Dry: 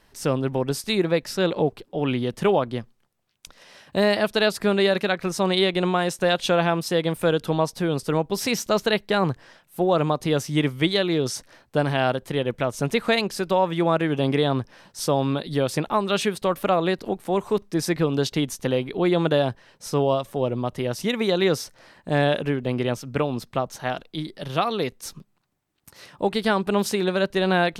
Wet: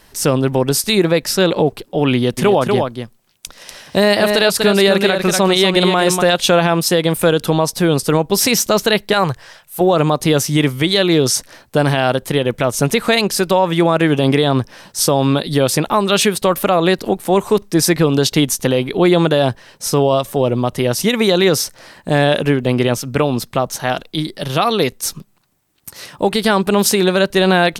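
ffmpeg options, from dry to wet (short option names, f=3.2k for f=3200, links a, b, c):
-filter_complex "[0:a]asplit=3[a][b][c];[a]afade=t=out:st=2.37:d=0.02[d];[b]aecho=1:1:242:0.447,afade=t=in:st=2.37:d=0.02,afade=t=out:st=6.21:d=0.02[e];[c]afade=t=in:st=6.21:d=0.02[f];[d][e][f]amix=inputs=3:normalize=0,asettb=1/sr,asplit=3[g][h][i];[g]atrim=end=9.134[j];[h]atrim=start=9.13:end=9.81,asetpts=PTS-STARTPTS,afade=t=in:d=0.004:c=qsin,afade=t=out:st=0.676:d=0.004:c=qsin,equalizer=f=260:t=o:w=1.1:g=-12.5[k];[i]atrim=start=9.806[l];[j][k]acrossfade=d=0.004:c1=hsin:c2=qsin[m];[m][l]acrossfade=d=0.004:c1=qsin:c2=hsin,highshelf=f=5.9k:g=9,alimiter=level_in=12dB:limit=-1dB:release=50:level=0:latency=1,volume=-2.5dB"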